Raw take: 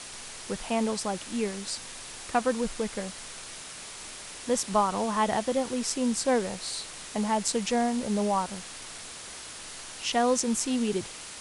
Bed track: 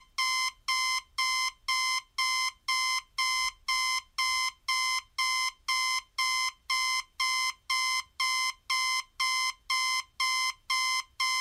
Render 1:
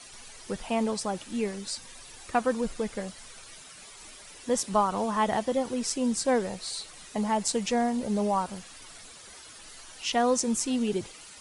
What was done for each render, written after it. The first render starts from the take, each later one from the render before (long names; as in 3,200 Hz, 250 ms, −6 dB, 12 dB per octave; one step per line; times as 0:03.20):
broadband denoise 11 dB, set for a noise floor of −43 dBFS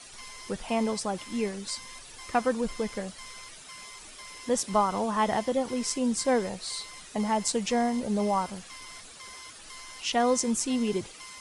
mix in bed track −19 dB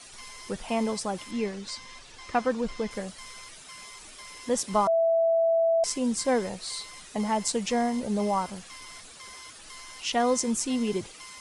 0:01.31–0:02.91: low-pass filter 6,100 Hz
0:04.87–0:05.84: beep over 661 Hz −19.5 dBFS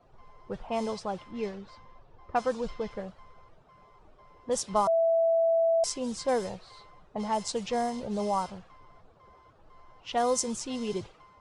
low-pass that shuts in the quiet parts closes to 660 Hz, open at −20.5 dBFS
octave-band graphic EQ 125/250/2,000 Hz +3/−8/−7 dB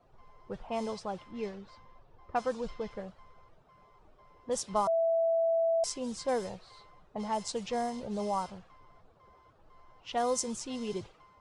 level −3.5 dB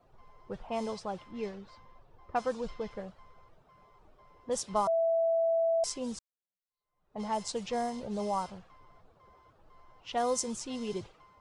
0:06.19–0:07.20: fade in exponential